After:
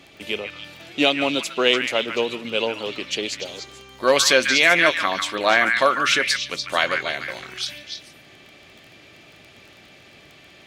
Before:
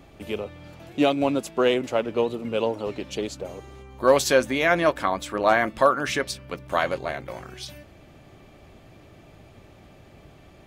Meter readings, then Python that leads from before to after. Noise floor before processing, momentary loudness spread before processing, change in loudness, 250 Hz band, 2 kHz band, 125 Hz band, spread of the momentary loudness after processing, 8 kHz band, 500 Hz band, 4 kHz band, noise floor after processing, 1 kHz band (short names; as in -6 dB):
-51 dBFS, 17 LU, +4.0 dB, -1.0 dB, +8.5 dB, -5.0 dB, 18 LU, +7.5 dB, -0.5 dB, +12.0 dB, -49 dBFS, +1.5 dB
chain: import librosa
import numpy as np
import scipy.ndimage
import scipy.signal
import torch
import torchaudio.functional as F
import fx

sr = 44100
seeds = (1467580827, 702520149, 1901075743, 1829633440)

p1 = fx.weighting(x, sr, curve='D')
p2 = fx.dmg_crackle(p1, sr, seeds[0], per_s=16.0, level_db=-34.0)
y = p2 + fx.echo_stepped(p2, sr, ms=146, hz=1700.0, octaves=1.4, feedback_pct=70, wet_db=-2.0, dry=0)